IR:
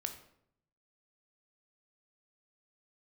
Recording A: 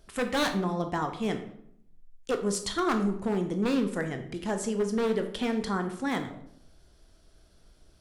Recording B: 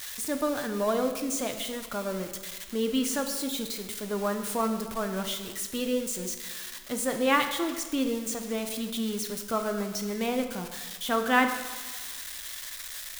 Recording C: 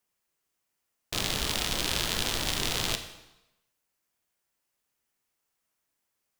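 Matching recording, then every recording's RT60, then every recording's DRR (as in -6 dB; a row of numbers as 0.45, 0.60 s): A; 0.70, 1.4, 0.95 s; 6.0, 6.0, 7.5 dB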